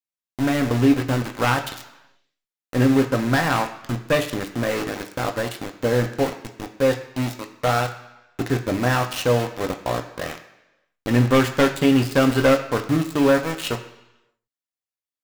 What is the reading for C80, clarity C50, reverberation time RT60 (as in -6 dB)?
13.0 dB, 11.0 dB, 1.0 s